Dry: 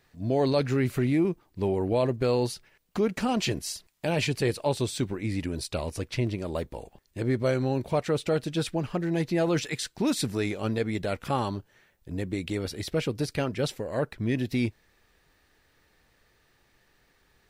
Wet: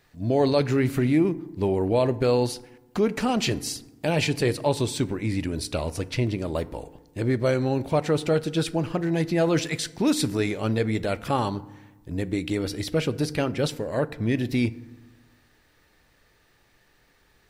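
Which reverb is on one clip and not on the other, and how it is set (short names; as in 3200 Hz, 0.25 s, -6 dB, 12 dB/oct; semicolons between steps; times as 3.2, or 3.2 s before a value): FDN reverb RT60 1.1 s, low-frequency decay 1.35×, high-frequency decay 0.45×, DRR 15 dB; gain +3 dB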